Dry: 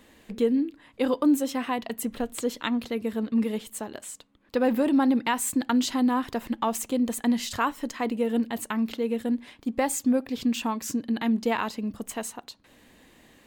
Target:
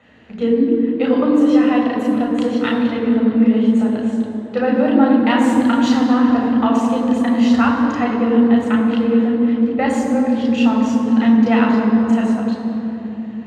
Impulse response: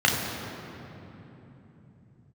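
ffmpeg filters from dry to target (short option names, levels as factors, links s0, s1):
-filter_complex "[0:a]bandreject=f=50:t=h:w=6,bandreject=f=100:t=h:w=6,bandreject=f=150:t=h:w=6,bandreject=f=200:t=h:w=6,bandreject=f=250:t=h:w=6,acrossover=split=2200[s0][s1];[s1]adynamicsmooth=sensitivity=3:basefreq=4100[s2];[s0][s2]amix=inputs=2:normalize=0[s3];[1:a]atrim=start_sample=2205,asetrate=41454,aresample=44100[s4];[s3][s4]afir=irnorm=-1:irlink=0,volume=0.376"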